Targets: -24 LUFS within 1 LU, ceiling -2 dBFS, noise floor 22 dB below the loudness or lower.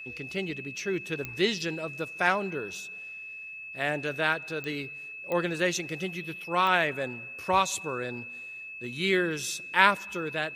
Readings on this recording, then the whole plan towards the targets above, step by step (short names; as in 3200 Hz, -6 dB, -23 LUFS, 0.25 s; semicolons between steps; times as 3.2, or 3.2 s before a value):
clicks 4; steady tone 2600 Hz; tone level -39 dBFS; loudness -29.5 LUFS; peak -3.0 dBFS; loudness target -24.0 LUFS
-> de-click; notch 2600 Hz, Q 30; gain +5.5 dB; limiter -2 dBFS